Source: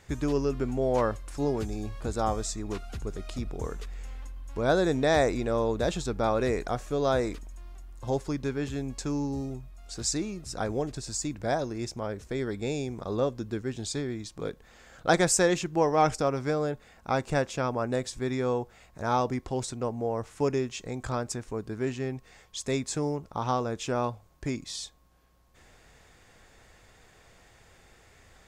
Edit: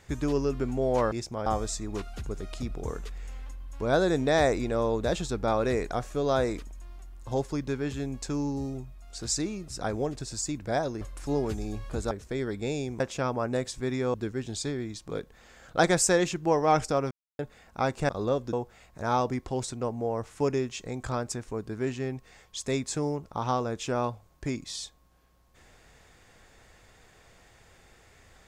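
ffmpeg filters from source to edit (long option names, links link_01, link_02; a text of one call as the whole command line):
ffmpeg -i in.wav -filter_complex "[0:a]asplit=11[link_01][link_02][link_03][link_04][link_05][link_06][link_07][link_08][link_09][link_10][link_11];[link_01]atrim=end=1.122[link_12];[link_02]atrim=start=11.768:end=12.112[link_13];[link_03]atrim=start=2.218:end=11.772[link_14];[link_04]atrim=start=1.118:end=2.222[link_15];[link_05]atrim=start=12.108:end=13.002[link_16];[link_06]atrim=start=17.388:end=18.532[link_17];[link_07]atrim=start=13.438:end=16.41,asetpts=PTS-STARTPTS,afade=type=out:start_time=2.968:duration=0.004:curve=hsin[link_18];[link_08]atrim=start=16.41:end=16.69,asetpts=PTS-STARTPTS,volume=0[link_19];[link_09]atrim=start=16.69:end=17.392,asetpts=PTS-STARTPTS,afade=type=in:duration=0.004:curve=hsin[link_20];[link_10]atrim=start=12.998:end=13.442[link_21];[link_11]atrim=start=18.528[link_22];[link_12][link_13]acrossfade=duration=0.004:curve1=hsin:curve2=hsin[link_23];[link_23][link_14]acrossfade=duration=0.004:curve1=hsin:curve2=hsin[link_24];[link_24][link_15]acrossfade=duration=0.004:curve1=hsin:curve2=hsin[link_25];[link_25][link_16]acrossfade=duration=0.004:curve1=hsin:curve2=hsin[link_26];[link_26][link_17]acrossfade=duration=0.004:curve1=hsin:curve2=hsin[link_27];[link_18][link_19][link_20]concat=n=3:v=0:a=1[link_28];[link_27][link_28]acrossfade=duration=0.004:curve1=hsin:curve2=hsin[link_29];[link_29][link_21]acrossfade=duration=0.004:curve1=hsin:curve2=hsin[link_30];[link_30][link_22]acrossfade=duration=0.004:curve1=hsin:curve2=hsin" out.wav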